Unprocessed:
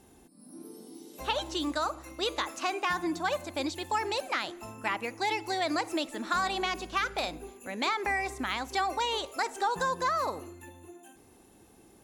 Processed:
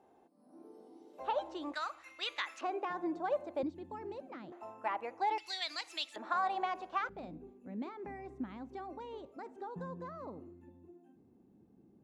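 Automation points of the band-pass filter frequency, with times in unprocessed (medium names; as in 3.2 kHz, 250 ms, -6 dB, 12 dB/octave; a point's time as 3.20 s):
band-pass filter, Q 1.6
690 Hz
from 1.74 s 2.2 kHz
from 2.61 s 510 Hz
from 3.63 s 200 Hz
from 4.52 s 740 Hz
from 5.38 s 3.6 kHz
from 6.16 s 790 Hz
from 7.09 s 190 Hz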